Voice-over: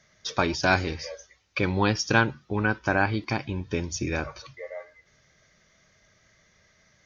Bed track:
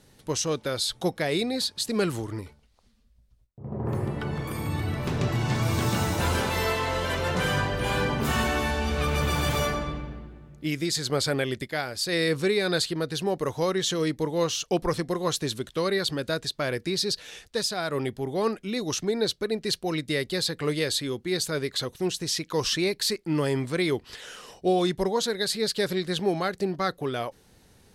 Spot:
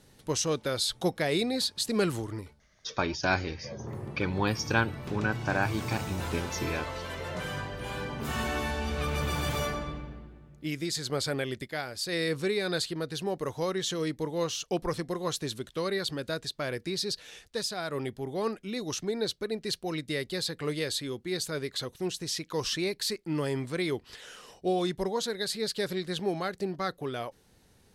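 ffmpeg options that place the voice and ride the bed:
-filter_complex "[0:a]adelay=2600,volume=0.562[s0];[1:a]volume=1.5,afade=t=out:st=2.08:d=0.93:silence=0.375837,afade=t=in:st=8.11:d=0.45:silence=0.562341[s1];[s0][s1]amix=inputs=2:normalize=0"

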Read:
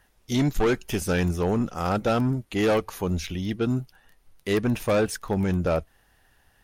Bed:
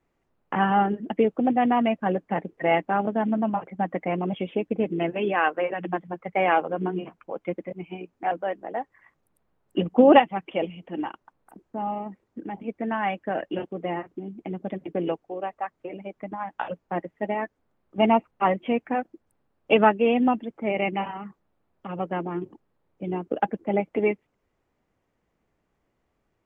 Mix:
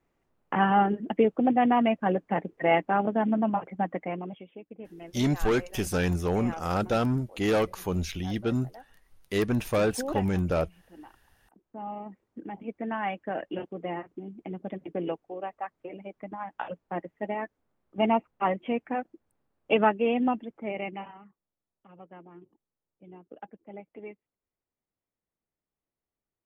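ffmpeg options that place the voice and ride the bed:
-filter_complex "[0:a]adelay=4850,volume=0.75[s0];[1:a]volume=4.47,afade=t=out:st=3.72:d=0.73:silence=0.133352,afade=t=in:st=11.37:d=0.86:silence=0.199526,afade=t=out:st=20.32:d=1.08:silence=0.177828[s1];[s0][s1]amix=inputs=2:normalize=0"

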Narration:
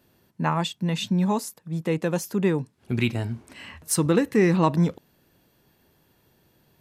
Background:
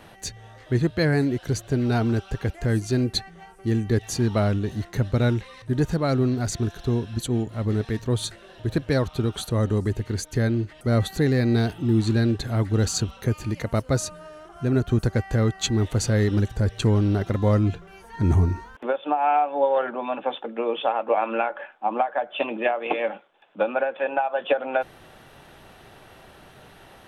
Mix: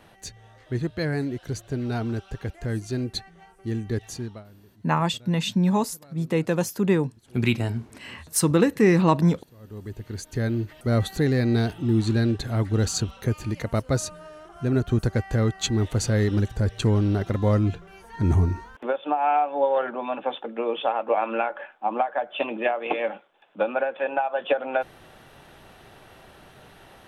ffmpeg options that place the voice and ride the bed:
-filter_complex "[0:a]adelay=4450,volume=1.19[s0];[1:a]volume=12.6,afade=t=out:st=4.04:d=0.4:silence=0.0707946,afade=t=in:st=9.59:d=1.1:silence=0.0421697[s1];[s0][s1]amix=inputs=2:normalize=0"

